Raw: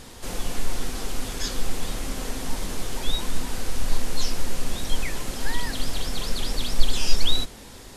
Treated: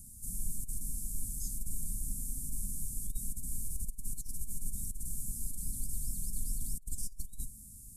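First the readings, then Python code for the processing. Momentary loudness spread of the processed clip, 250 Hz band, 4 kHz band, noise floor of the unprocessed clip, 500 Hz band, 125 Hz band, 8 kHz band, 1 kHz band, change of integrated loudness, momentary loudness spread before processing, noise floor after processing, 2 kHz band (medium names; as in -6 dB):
4 LU, -15.0 dB, -30.5 dB, -43 dBFS, under -35 dB, -10.0 dB, -3.5 dB, under -40 dB, -9.0 dB, 7 LU, -51 dBFS, under -40 dB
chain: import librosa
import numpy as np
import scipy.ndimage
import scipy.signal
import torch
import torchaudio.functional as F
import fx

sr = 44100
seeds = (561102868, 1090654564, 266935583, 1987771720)

y = scipy.signal.sosfilt(scipy.signal.ellip(3, 1.0, 60, [210.0, 8700.0], 'bandstop', fs=sr, output='sos'), x)
y = fx.tone_stack(y, sr, knobs='5-5-5')
y = fx.over_compress(y, sr, threshold_db=-36.0, ratio=-0.5)
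y = F.gain(torch.from_numpy(y), 5.0).numpy()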